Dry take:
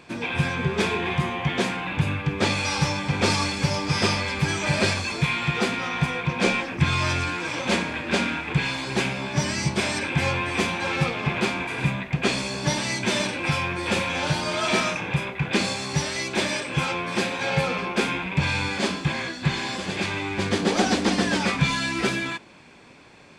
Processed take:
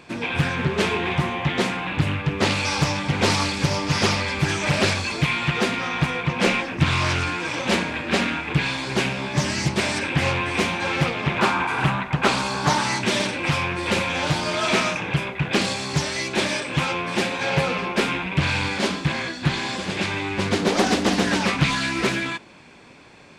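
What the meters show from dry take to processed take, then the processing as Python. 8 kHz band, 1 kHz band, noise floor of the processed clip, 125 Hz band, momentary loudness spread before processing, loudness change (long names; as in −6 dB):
+1.0 dB, +3.0 dB, −35 dBFS, +1.5 dB, 4 LU, +2.0 dB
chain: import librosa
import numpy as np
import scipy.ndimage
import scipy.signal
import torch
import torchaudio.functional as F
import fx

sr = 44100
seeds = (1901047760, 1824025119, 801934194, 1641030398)

y = fx.spec_box(x, sr, start_s=11.4, length_s=1.61, low_hz=750.0, high_hz=1600.0, gain_db=9)
y = fx.doppler_dist(y, sr, depth_ms=0.66)
y = y * librosa.db_to_amplitude(2.0)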